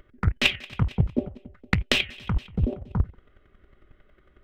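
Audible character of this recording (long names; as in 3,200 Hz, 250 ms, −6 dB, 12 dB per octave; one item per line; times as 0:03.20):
chopped level 11 Hz, depth 65%, duty 10%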